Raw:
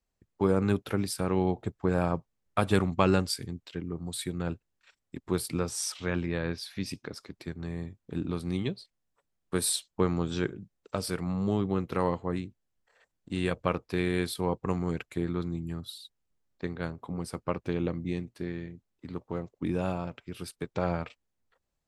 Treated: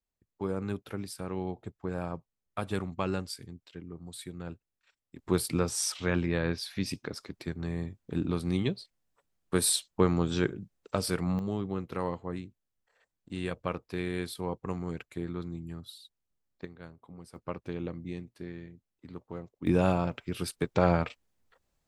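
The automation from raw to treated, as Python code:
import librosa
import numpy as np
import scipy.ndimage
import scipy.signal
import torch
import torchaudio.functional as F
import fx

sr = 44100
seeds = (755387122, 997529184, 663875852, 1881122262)

y = fx.gain(x, sr, db=fx.steps((0.0, -8.0), (5.19, 2.0), (11.39, -5.0), (16.65, -13.0), (17.36, -6.0), (19.67, 5.5)))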